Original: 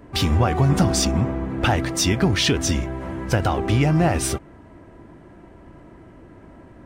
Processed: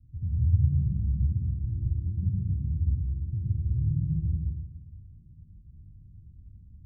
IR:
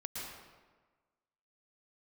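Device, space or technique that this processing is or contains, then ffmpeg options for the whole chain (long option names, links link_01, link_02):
club heard from the street: -filter_complex "[0:a]alimiter=limit=-13dB:level=0:latency=1:release=457,lowpass=frequency=130:width=0.5412,lowpass=frequency=130:width=1.3066[link_01];[1:a]atrim=start_sample=2205[link_02];[link_01][link_02]afir=irnorm=-1:irlink=0"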